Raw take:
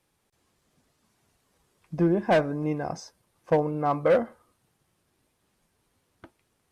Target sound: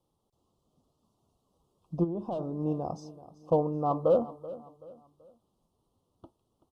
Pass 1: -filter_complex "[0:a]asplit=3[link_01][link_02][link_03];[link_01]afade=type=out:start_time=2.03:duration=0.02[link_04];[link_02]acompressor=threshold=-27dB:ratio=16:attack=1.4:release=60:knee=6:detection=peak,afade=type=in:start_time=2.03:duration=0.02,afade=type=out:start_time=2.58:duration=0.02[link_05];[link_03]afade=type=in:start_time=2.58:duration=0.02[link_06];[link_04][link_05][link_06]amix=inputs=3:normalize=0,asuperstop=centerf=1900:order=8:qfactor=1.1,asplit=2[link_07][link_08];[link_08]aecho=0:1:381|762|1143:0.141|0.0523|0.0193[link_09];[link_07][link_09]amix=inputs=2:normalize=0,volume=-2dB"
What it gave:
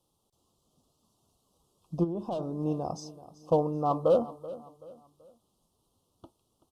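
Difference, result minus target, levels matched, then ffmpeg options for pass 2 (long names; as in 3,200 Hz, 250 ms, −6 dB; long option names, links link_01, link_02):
4,000 Hz band +7.5 dB
-filter_complex "[0:a]asplit=3[link_01][link_02][link_03];[link_01]afade=type=out:start_time=2.03:duration=0.02[link_04];[link_02]acompressor=threshold=-27dB:ratio=16:attack=1.4:release=60:knee=6:detection=peak,afade=type=in:start_time=2.03:duration=0.02,afade=type=out:start_time=2.58:duration=0.02[link_05];[link_03]afade=type=in:start_time=2.58:duration=0.02[link_06];[link_04][link_05][link_06]amix=inputs=3:normalize=0,asuperstop=centerf=1900:order=8:qfactor=1.1,highshelf=frequency=2500:gain=-11,asplit=2[link_07][link_08];[link_08]aecho=0:1:381|762|1143:0.141|0.0523|0.0193[link_09];[link_07][link_09]amix=inputs=2:normalize=0,volume=-2dB"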